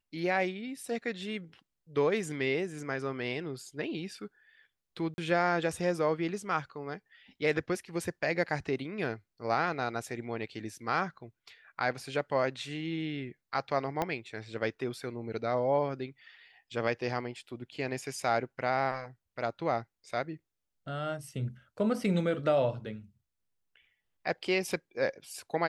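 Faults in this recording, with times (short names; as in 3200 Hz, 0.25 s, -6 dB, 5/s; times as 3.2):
5.14–5.18 gap 41 ms
14.02 pop -16 dBFS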